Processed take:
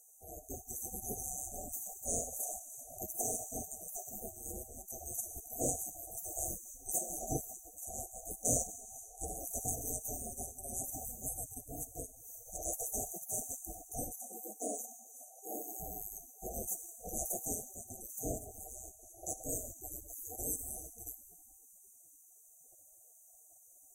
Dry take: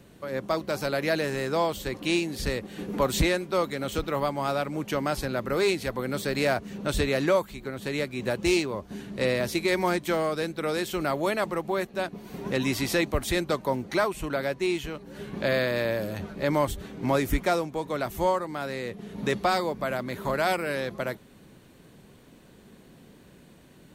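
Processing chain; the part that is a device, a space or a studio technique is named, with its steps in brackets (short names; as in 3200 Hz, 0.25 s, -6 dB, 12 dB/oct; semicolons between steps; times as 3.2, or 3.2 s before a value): saturated reverb return (on a send at -6 dB: reverb RT60 2.9 s, pre-delay 16 ms + soft clip -25 dBFS, distortion -13 dB); on the sum: spectral gate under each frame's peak -25 dB weak; 14.18–15.8 steep high-pass 220 Hz 48 dB/oct; FFT band-reject 780–5900 Hz; gain +7.5 dB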